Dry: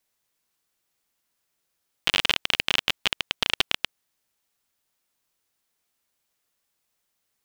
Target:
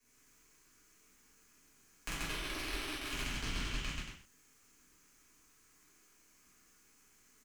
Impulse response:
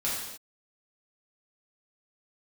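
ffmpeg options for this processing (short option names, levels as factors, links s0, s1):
-filter_complex "[0:a]firequalizer=gain_entry='entry(140,0);entry(230,5);entry(340,-7);entry(620,-17);entry(1300,-8);entry(2300,-9);entry(3700,-19);entry(6300,-6);entry(9100,-14);entry(14000,-16)':delay=0.05:min_phase=1,asettb=1/sr,asplit=3[s0][s1][s2];[s0]atrim=end=2.094[s3];[s1]atrim=start=2.09:end=3.09,asetpts=PTS-STARTPTS,afade=t=in:d=0.004:c=qsin,afade=t=out:st=0.996:d=0.004:c=qsin,aeval=exprs='(tanh(39.8*val(0)+0.7)-tanh(0.7))/39.8':c=same[s4];[s2]atrim=start=3.086[s5];[s3][s4]acrossfade=d=0.004:c1=hsin:c2=qsin[s6];[s6][s5]acrossfade=d=0.004:c1=qsin:c2=hsin,acrossover=split=110|3200[s7][s8][s9];[s7]acompressor=threshold=0.00447:ratio=4[s10];[s8]acompressor=threshold=0.00178:ratio=4[s11];[s9]acompressor=threshold=0.00112:ratio=4[s12];[s10][s11][s12]amix=inputs=3:normalize=0,acrossover=split=270[s13][s14];[s13]aeval=exprs='abs(val(0))':c=same[s15];[s15][s14]amix=inputs=2:normalize=0,acompressor=threshold=0.00178:ratio=4,aecho=1:1:46.65|134.1|230.3:0.891|1|0.501[s16];[1:a]atrim=start_sample=2205,asetrate=79380,aresample=44100[s17];[s16][s17]afir=irnorm=-1:irlink=0,volume=5.62"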